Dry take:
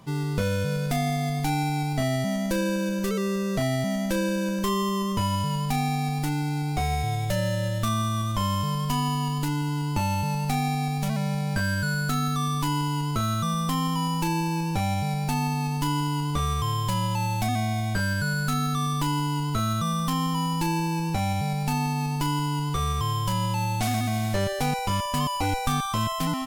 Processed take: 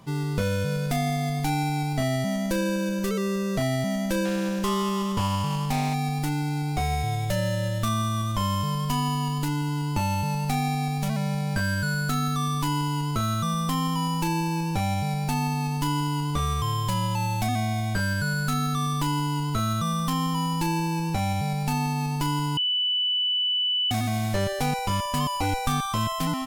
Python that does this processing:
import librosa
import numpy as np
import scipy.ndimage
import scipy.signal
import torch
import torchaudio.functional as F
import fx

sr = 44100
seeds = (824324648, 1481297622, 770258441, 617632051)

y = fx.doppler_dist(x, sr, depth_ms=0.2, at=(4.25, 5.94))
y = fx.edit(y, sr, fx.bleep(start_s=22.57, length_s=1.34, hz=2980.0, db=-21.5), tone=tone)